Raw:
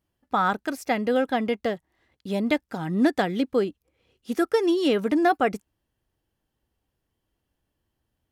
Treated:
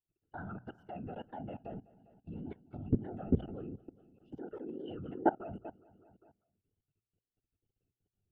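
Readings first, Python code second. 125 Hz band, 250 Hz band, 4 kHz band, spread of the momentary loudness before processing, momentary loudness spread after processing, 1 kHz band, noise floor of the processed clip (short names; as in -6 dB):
-3.5 dB, -14.0 dB, under -25 dB, 9 LU, 18 LU, -15.5 dB, under -85 dBFS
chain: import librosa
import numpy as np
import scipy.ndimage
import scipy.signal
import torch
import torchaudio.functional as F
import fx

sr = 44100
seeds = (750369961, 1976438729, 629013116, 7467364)

p1 = fx.env_phaser(x, sr, low_hz=170.0, high_hz=5000.0, full_db=-23.0)
p2 = fx.over_compress(p1, sr, threshold_db=-29.0, ratio=-1.0)
p3 = p1 + F.gain(torch.from_numpy(p2), -0.5).numpy()
p4 = fx.octave_resonator(p3, sr, note='F', decay_s=0.16)
p5 = fx.whisperise(p4, sr, seeds[0])
p6 = fx.dynamic_eq(p5, sr, hz=210.0, q=1.9, threshold_db=-37.0, ratio=4.0, max_db=3)
p7 = fx.wow_flutter(p6, sr, seeds[1], rate_hz=2.1, depth_cents=110.0)
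p8 = fx.peak_eq(p7, sr, hz=96.0, db=6.5, octaves=0.54)
p9 = p8 + fx.echo_feedback(p8, sr, ms=200, feedback_pct=52, wet_db=-15.5, dry=0)
p10 = fx.level_steps(p9, sr, step_db=20)
p11 = fx.hum_notches(p10, sr, base_hz=60, count=2)
y = F.gain(torch.from_numpy(p11), -2.5).numpy()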